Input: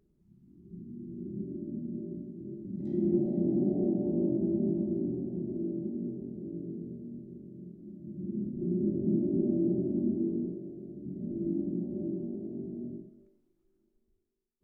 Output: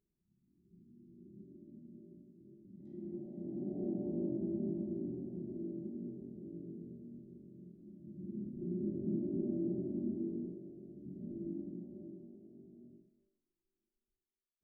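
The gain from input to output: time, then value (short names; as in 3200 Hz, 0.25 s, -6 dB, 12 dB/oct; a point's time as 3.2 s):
3.31 s -17 dB
3.94 s -8 dB
11.3 s -8 dB
12.4 s -18 dB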